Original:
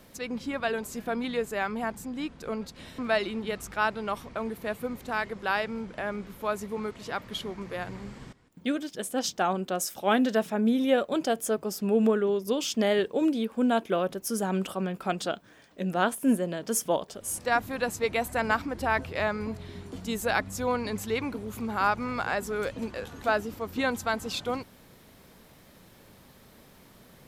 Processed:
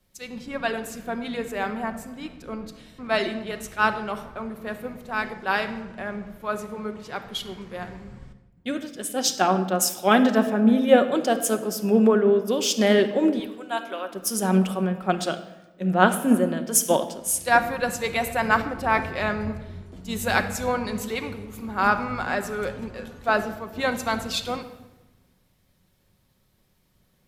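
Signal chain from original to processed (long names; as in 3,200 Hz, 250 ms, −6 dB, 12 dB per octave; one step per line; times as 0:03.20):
0:13.39–0:14.13: high-pass filter 790 Hz 12 dB per octave
rectangular room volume 2,700 cubic metres, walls mixed, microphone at 1 metre
multiband upward and downward expander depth 70%
level +3 dB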